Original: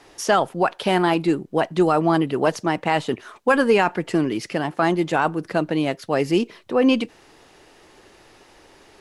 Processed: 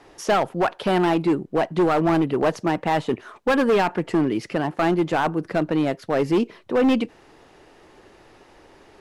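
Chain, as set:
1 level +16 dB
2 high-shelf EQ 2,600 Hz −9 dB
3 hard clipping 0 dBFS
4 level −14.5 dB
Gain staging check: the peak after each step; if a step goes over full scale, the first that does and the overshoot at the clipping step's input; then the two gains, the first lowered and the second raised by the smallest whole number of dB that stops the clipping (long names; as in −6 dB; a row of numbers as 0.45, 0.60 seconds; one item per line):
+9.0, +8.5, 0.0, −14.5 dBFS
step 1, 8.5 dB
step 1 +7 dB, step 4 −5.5 dB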